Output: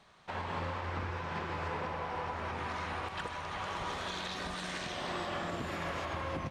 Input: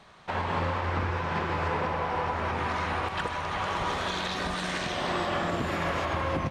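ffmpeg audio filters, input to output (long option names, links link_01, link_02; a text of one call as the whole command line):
ffmpeg -i in.wav -af "equalizer=frequency=7800:width_type=o:width=2.6:gain=3,volume=-8.5dB" out.wav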